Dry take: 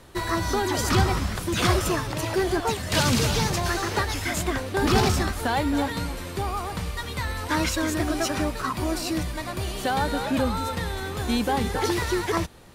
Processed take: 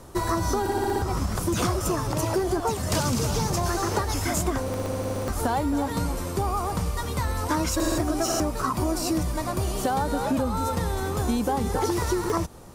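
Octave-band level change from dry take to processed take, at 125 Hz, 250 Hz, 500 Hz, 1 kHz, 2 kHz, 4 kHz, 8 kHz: −0.5, 0.0, 0.0, 0.0, −6.5, −5.5, +0.5 decibels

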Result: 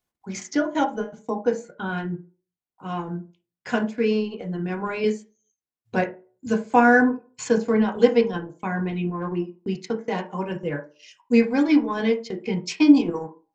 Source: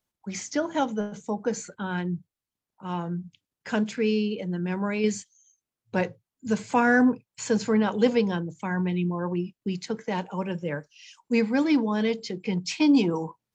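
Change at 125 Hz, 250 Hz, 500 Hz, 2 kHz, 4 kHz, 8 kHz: −0.5 dB, +3.0 dB, +4.0 dB, +3.5 dB, −0.5 dB, can't be measured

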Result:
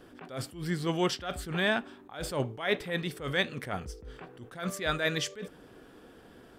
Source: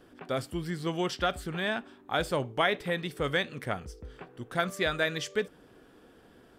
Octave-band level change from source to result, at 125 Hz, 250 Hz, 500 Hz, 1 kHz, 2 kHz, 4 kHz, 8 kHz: +1.0, +0.5, −2.0, −4.0, −1.0, 0.0, +3.0 decibels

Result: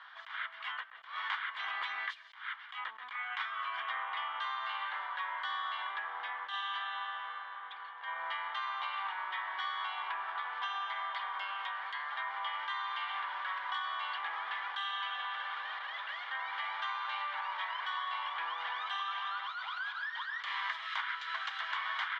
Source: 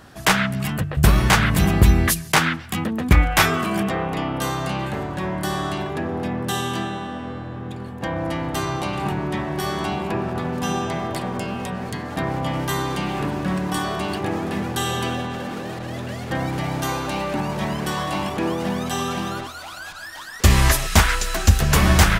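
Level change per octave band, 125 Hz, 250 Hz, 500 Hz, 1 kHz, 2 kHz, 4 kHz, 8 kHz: below −40 dB, below −40 dB, −30.5 dB, −10.5 dB, −10.5 dB, −12.0 dB, below −40 dB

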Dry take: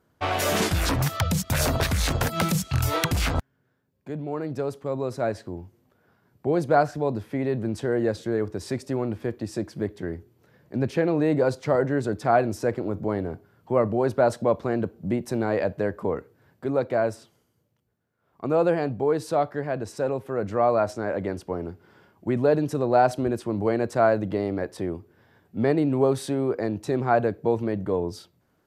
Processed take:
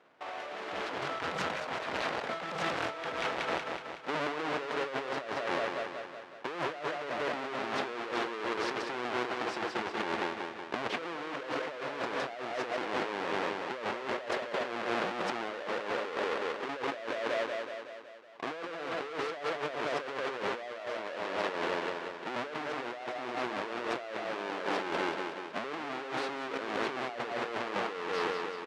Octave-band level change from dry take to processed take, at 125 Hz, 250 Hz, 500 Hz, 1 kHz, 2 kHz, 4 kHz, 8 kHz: −23.5, −14.0, −11.0, −6.0, −1.0, −3.5, −15.5 decibels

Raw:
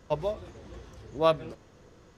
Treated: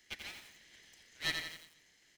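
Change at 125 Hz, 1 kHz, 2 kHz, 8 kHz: −18.0 dB, −21.5 dB, +5.0 dB, can't be measured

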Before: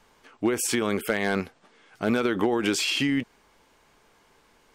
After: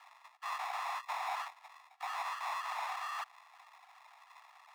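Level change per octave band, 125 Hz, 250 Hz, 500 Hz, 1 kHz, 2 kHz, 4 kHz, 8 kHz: below −40 dB, below −40 dB, −26.0 dB, −1.5 dB, −13.0 dB, −17.0 dB, −22.0 dB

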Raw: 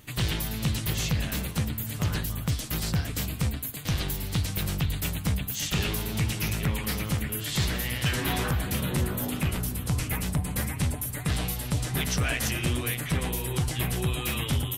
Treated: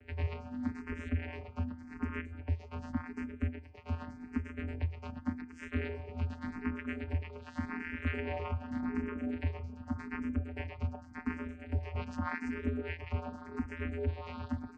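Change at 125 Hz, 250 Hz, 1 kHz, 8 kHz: −10.5 dB, −5.0 dB, −7.0 dB, below −35 dB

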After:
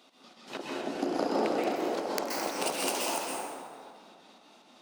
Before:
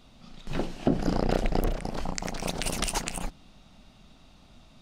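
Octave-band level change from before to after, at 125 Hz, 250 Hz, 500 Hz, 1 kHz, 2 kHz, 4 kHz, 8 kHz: −18.5, −3.5, +1.5, +2.5, +0.5, −0.5, −1.0 decibels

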